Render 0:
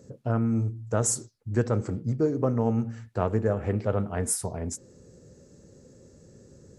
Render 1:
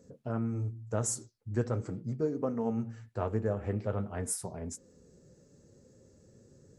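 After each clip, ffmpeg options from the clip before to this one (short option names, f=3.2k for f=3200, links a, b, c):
-af "flanger=delay=4.1:depth=5.7:regen=-48:speed=0.41:shape=sinusoidal,volume=-3dB"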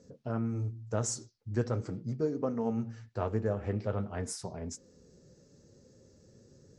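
-af "lowpass=f=5.4k:t=q:w=1.8"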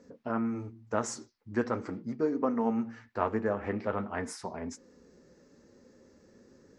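-af "equalizer=f=125:t=o:w=1:g=-11,equalizer=f=250:t=o:w=1:g=8,equalizer=f=1k:t=o:w=1:g=9,equalizer=f=2k:t=o:w=1:g=9,equalizer=f=8k:t=o:w=1:g=-4,volume=-1.5dB"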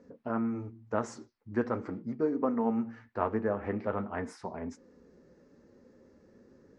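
-af "lowpass=f=1.9k:p=1"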